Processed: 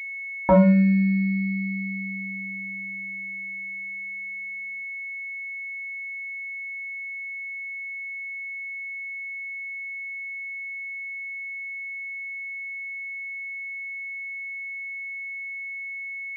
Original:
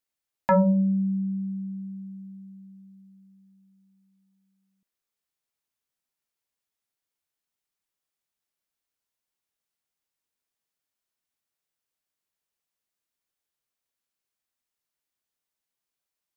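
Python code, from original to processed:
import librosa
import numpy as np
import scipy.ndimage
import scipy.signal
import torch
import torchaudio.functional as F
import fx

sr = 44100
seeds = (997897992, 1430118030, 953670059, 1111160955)

y = fx.wiener(x, sr, points=25)
y = fx.pwm(y, sr, carrier_hz=2200.0)
y = F.gain(torch.from_numpy(y), 4.5).numpy()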